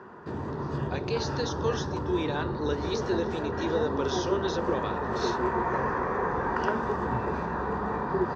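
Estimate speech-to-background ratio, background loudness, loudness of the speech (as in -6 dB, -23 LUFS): -2.5 dB, -30.5 LUFS, -33.0 LUFS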